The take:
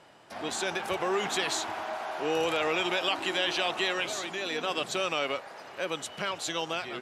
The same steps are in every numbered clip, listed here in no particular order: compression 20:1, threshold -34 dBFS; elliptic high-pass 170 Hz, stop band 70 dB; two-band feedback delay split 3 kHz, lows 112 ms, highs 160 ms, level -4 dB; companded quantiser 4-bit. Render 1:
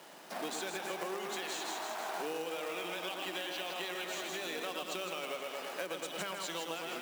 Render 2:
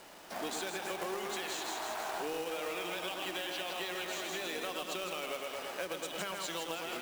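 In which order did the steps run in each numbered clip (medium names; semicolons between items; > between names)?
two-band feedback delay > companded quantiser > compression > elliptic high-pass; two-band feedback delay > compression > elliptic high-pass > companded quantiser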